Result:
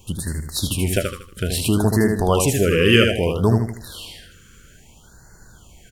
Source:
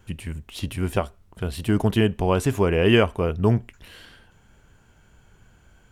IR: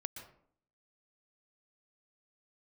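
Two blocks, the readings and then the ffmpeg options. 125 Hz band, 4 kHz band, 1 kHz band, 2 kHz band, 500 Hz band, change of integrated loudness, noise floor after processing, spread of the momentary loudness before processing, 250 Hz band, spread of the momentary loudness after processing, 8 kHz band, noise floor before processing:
+3.5 dB, +8.0 dB, +2.0 dB, +6.0 dB, +3.0 dB, +3.5 dB, −49 dBFS, 15 LU, +3.0 dB, 15 LU, +14.5 dB, −58 dBFS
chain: -filter_complex "[0:a]aecho=1:1:78|156|234|312:0.562|0.191|0.065|0.0221,asplit=2[link_01][link_02];[link_02]acompressor=threshold=-25dB:ratio=6,volume=0dB[link_03];[link_01][link_03]amix=inputs=2:normalize=0,highshelf=frequency=2900:gain=11.5,afftfilt=real='re*(1-between(b*sr/1024,750*pow(3000/750,0.5+0.5*sin(2*PI*0.61*pts/sr))/1.41,750*pow(3000/750,0.5+0.5*sin(2*PI*0.61*pts/sr))*1.41))':imag='im*(1-between(b*sr/1024,750*pow(3000/750,0.5+0.5*sin(2*PI*0.61*pts/sr))/1.41,750*pow(3000/750,0.5+0.5*sin(2*PI*0.61*pts/sr))*1.41))':win_size=1024:overlap=0.75,volume=-1dB"

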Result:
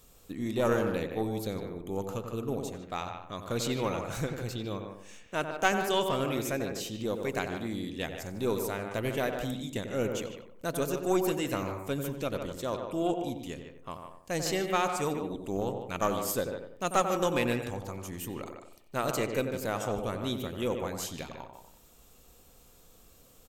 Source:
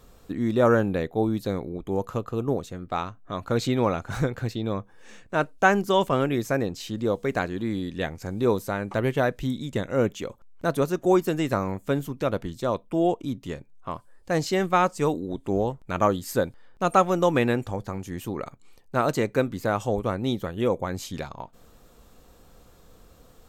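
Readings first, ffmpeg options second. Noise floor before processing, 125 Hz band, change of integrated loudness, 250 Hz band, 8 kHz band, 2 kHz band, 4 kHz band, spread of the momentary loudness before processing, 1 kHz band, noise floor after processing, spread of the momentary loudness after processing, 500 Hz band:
−54 dBFS, −7.5 dB, −6.5 dB, −7.0 dB, +2.0 dB, −5.5 dB, −1.0 dB, 12 LU, −6.5 dB, −58 dBFS, 11 LU, −6.5 dB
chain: -filter_complex "[0:a]asplit=2[link_01][link_02];[link_02]adelay=92,lowpass=frequency=1500:poles=1,volume=-6.5dB,asplit=2[link_03][link_04];[link_04]adelay=92,lowpass=frequency=1500:poles=1,volume=0.42,asplit=2[link_05][link_06];[link_06]adelay=92,lowpass=frequency=1500:poles=1,volume=0.42,asplit=2[link_07][link_08];[link_08]adelay=92,lowpass=frequency=1500:poles=1,volume=0.42,asplit=2[link_09][link_10];[link_10]adelay=92,lowpass=frequency=1500:poles=1,volume=0.42[link_11];[link_03][link_05][link_07][link_09][link_11]amix=inputs=5:normalize=0[link_12];[link_01][link_12]amix=inputs=2:normalize=0,aexciter=amount=1.7:drive=7.5:freq=2300,asplit=2[link_13][link_14];[link_14]adelay=150,highpass=300,lowpass=3400,asoftclip=type=hard:threshold=-13dB,volume=-7dB[link_15];[link_13][link_15]amix=inputs=2:normalize=0,aeval=exprs='0.596*(cos(1*acos(clip(val(0)/0.596,-1,1)))-cos(1*PI/2))+0.168*(cos(2*acos(clip(val(0)/0.596,-1,1)))-cos(2*PI/2))':channel_layout=same,volume=-8dB"

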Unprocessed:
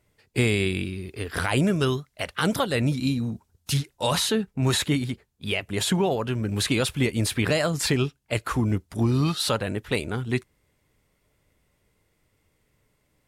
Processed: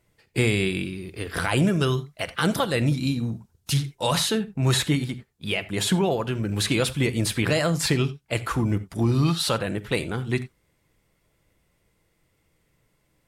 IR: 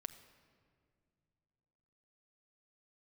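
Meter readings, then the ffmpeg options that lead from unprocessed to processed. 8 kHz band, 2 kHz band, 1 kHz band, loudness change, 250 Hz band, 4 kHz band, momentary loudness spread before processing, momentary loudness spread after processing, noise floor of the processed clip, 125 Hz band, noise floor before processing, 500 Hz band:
+0.5 dB, +0.5 dB, +0.5 dB, +1.0 dB, +0.5 dB, +0.5 dB, 8 LU, 8 LU, −69 dBFS, +1.5 dB, −71 dBFS, 0.0 dB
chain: -filter_complex "[1:a]atrim=start_sample=2205,atrim=end_sample=4410[link_01];[0:a][link_01]afir=irnorm=-1:irlink=0,volume=4.5dB"

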